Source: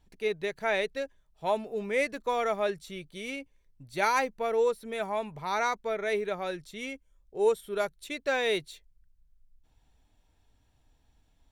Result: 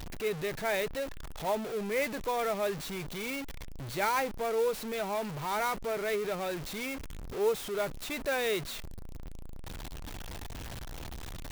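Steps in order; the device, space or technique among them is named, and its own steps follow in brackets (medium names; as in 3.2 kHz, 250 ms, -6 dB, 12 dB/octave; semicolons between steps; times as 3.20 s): early CD player with a faulty converter (jump at every zero crossing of -29.5 dBFS; sampling jitter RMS 0.024 ms); trim -5 dB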